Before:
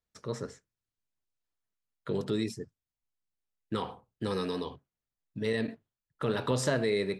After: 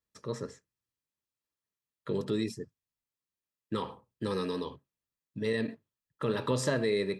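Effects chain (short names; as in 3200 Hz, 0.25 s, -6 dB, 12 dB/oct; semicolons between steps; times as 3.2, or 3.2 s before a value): notch comb 740 Hz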